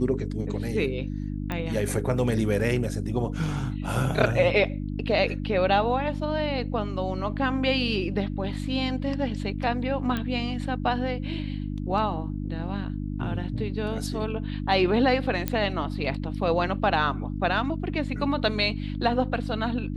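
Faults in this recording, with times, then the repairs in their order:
hum 50 Hz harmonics 6 -31 dBFS
1.52 s: pop -17 dBFS
10.17 s: pop -16 dBFS
15.48 s: pop -11 dBFS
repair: de-click; de-hum 50 Hz, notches 6

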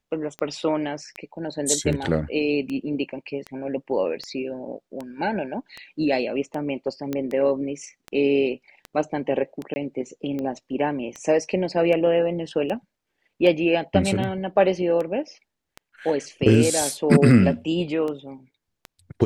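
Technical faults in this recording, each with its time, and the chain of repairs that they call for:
tick 78 rpm -19 dBFS
7.13 s: pop -14 dBFS
9.74–9.76 s: dropout 20 ms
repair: de-click; interpolate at 9.74 s, 20 ms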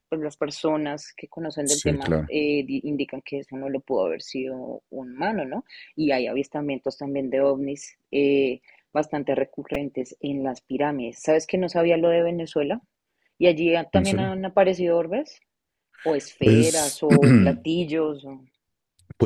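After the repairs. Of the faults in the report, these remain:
nothing left

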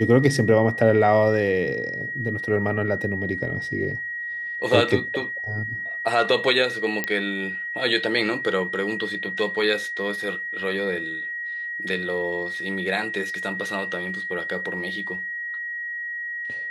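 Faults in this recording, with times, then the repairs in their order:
whine 1.9 kHz -28 dBFS
7.04 s: pop -9 dBFS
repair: de-click; band-stop 1.9 kHz, Q 30

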